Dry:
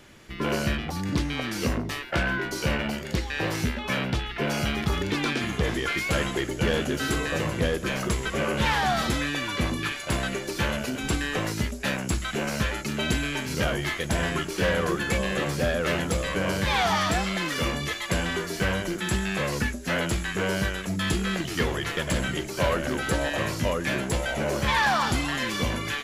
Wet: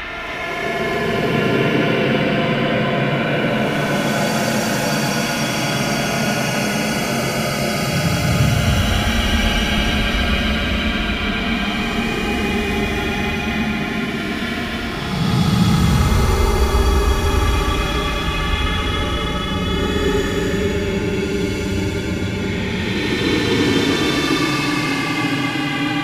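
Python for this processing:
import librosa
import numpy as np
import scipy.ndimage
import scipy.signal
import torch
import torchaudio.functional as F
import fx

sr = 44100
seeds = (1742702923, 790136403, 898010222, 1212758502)

p1 = fx.paulstretch(x, sr, seeds[0], factor=31.0, window_s=0.05, from_s=4.37)
p2 = p1 + fx.echo_split(p1, sr, split_hz=350.0, low_ms=113, high_ms=269, feedback_pct=52, wet_db=-4.5, dry=0)
y = F.gain(torch.from_numpy(p2), 6.5).numpy()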